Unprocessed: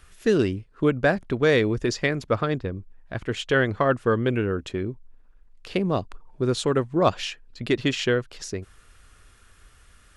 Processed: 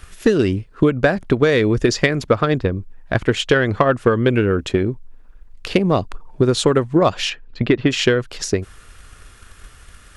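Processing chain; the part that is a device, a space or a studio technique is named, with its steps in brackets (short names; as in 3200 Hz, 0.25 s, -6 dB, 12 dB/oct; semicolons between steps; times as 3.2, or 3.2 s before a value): drum-bus smash (transient shaper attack +6 dB, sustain +1 dB; compressor 6:1, threshold -19 dBFS, peak gain reduction 8.5 dB; soft clip -10.5 dBFS, distortion -23 dB); 7.29–7.89 LPF 4500 Hz -> 2100 Hz 12 dB/oct; gain +9 dB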